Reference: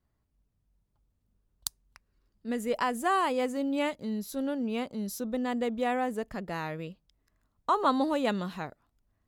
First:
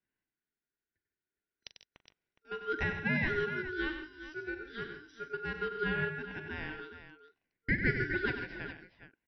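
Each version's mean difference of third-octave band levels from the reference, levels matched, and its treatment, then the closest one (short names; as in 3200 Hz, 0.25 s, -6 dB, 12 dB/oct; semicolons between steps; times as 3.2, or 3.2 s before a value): 13.5 dB: FFT band-pass 470–5000 Hz; high shelf 2700 Hz -11.5 dB; ring modulator 920 Hz; tapped delay 41/95/142/161/414 ms -13.5/-8.5/-14/-15/-12 dB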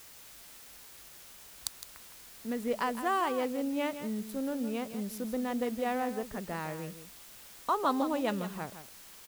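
7.0 dB: Wiener smoothing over 9 samples; in parallel at -2 dB: compressor, threshold -43 dBFS, peak gain reduction 21 dB; on the sum: requantised 8-bit, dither triangular; echo 0.162 s -11 dB; gain -4 dB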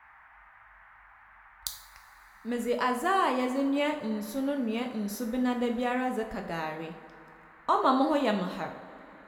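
5.0 dB: dynamic EQ 9200 Hz, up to -4 dB, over -53 dBFS, Q 1.2; band noise 790–2000 Hz -57 dBFS; on a send: band-limited delay 81 ms, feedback 78%, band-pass 580 Hz, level -15 dB; on the sum: two-slope reverb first 0.52 s, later 4 s, from -22 dB, DRR 3.5 dB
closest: third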